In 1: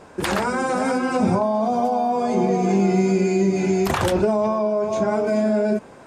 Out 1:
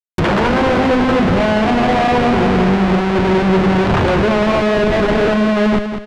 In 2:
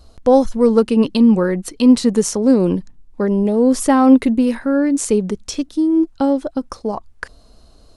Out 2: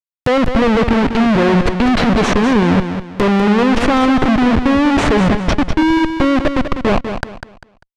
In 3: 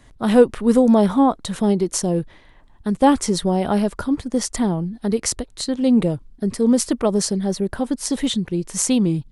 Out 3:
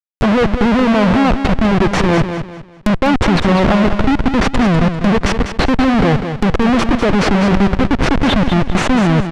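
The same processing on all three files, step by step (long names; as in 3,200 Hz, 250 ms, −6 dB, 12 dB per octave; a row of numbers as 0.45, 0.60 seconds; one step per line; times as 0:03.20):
comparator with hysteresis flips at −24.5 dBFS
treble cut that deepens with the level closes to 2,900 Hz, closed at −21.5 dBFS
repeating echo 198 ms, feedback 31%, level −8.5 dB
loudness normalisation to −14 LKFS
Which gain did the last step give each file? +6.5, +4.0, +8.0 decibels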